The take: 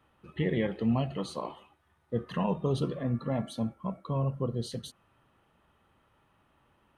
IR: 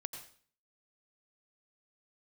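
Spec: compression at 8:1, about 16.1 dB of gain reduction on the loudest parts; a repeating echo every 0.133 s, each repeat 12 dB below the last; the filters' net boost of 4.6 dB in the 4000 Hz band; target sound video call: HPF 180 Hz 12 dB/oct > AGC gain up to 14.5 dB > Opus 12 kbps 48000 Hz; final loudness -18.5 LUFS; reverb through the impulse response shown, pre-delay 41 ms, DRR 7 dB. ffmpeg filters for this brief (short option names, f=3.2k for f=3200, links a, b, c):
-filter_complex "[0:a]equalizer=f=4k:t=o:g=5.5,acompressor=threshold=-41dB:ratio=8,aecho=1:1:133|266|399:0.251|0.0628|0.0157,asplit=2[a][b];[1:a]atrim=start_sample=2205,adelay=41[c];[b][c]afir=irnorm=-1:irlink=0,volume=-5.5dB[d];[a][d]amix=inputs=2:normalize=0,highpass=180,dynaudnorm=m=14.5dB,volume=28.5dB" -ar 48000 -c:a libopus -b:a 12k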